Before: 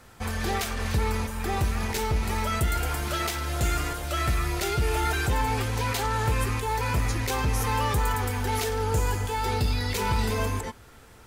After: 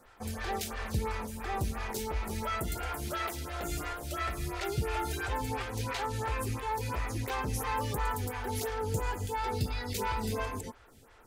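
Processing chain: lamp-driven phase shifter 2.9 Hz; trim -3.5 dB

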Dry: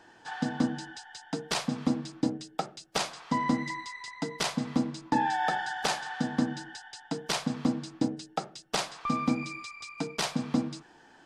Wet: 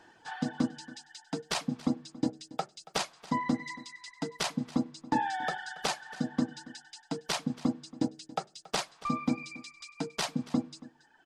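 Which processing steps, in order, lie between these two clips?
reverb removal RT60 1.6 s; on a send: delay 279 ms -19.5 dB; on the sum: trim -1.5 dB

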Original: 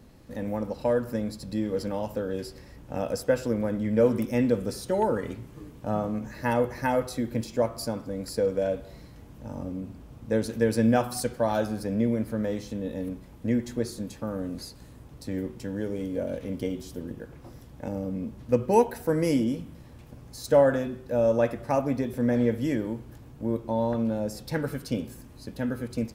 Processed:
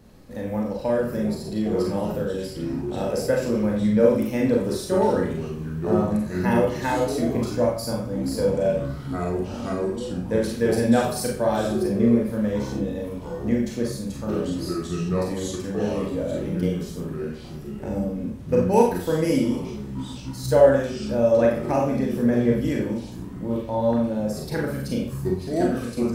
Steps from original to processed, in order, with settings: 13.02–14.07 s: crackle 29 per s -48 dBFS; ever faster or slower copies 525 ms, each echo -5 st, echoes 2, each echo -6 dB; Schroeder reverb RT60 0.4 s, combs from 30 ms, DRR -1 dB

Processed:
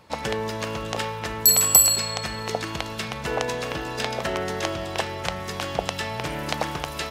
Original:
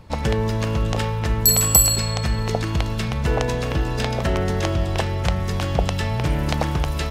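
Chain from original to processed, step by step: high-pass 510 Hz 6 dB/octave

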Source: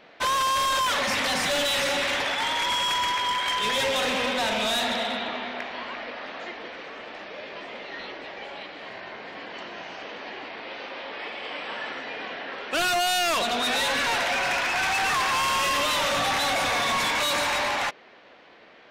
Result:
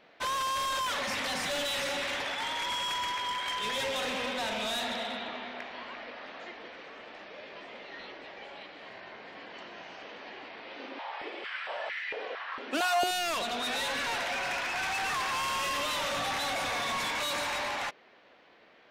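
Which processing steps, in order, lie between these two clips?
10.76–13.11 s: step-sequenced high-pass 4.4 Hz 260–2000 Hz; trim -7.5 dB

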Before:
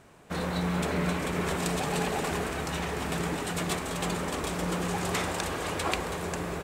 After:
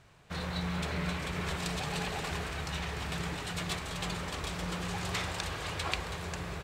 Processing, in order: FFT filter 130 Hz 0 dB, 240 Hz -12 dB, 4.3 kHz 0 dB, 9.3 kHz -9 dB

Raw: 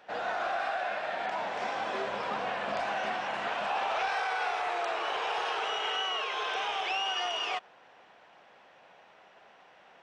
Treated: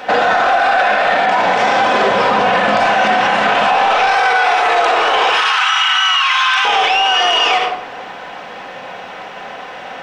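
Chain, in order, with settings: 5.29–6.65 s: steep high-pass 1 kHz 36 dB/octave; reverberation RT60 0.70 s, pre-delay 4 ms, DRR 3 dB; loudness maximiser +29.5 dB; trim -4 dB

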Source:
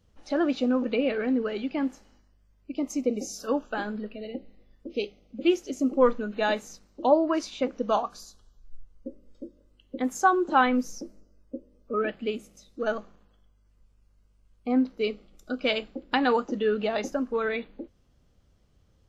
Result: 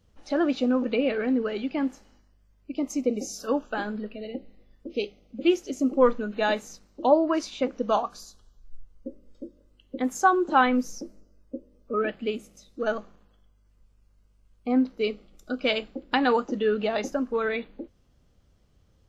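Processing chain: trim +1 dB

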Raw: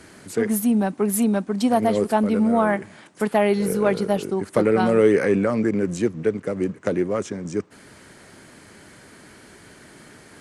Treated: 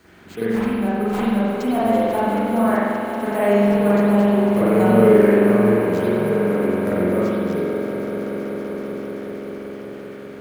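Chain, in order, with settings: echo with a slow build-up 191 ms, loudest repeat 5, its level -13.5 dB; sample-rate reducer 11 kHz, jitter 0%; spring tank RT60 1.9 s, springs 44 ms, chirp 65 ms, DRR -9.5 dB; attacks held to a fixed rise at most 420 dB/s; trim -8.5 dB

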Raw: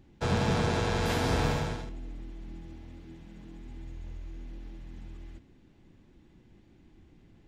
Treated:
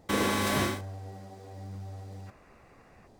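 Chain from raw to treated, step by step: speed mistake 33 rpm record played at 78 rpm; time-frequency box 2.27–3.07 s, 970–2900 Hz +12 dB

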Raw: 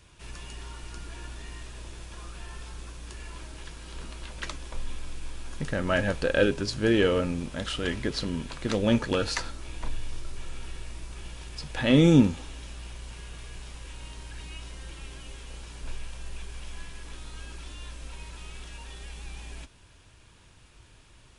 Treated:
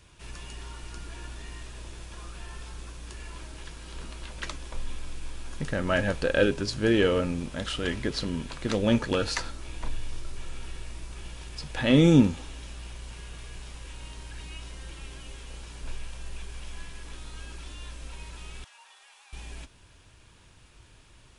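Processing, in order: 18.64–19.33 s: ladder high-pass 690 Hz, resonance 35%

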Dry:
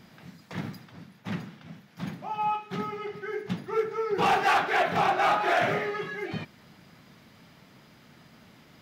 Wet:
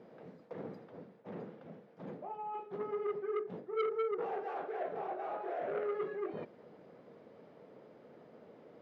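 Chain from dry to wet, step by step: reverse; compression 8:1, threshold -36 dBFS, peak gain reduction 16 dB; reverse; band-pass filter 480 Hz, Q 3.8; transformer saturation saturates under 1.1 kHz; trim +10.5 dB

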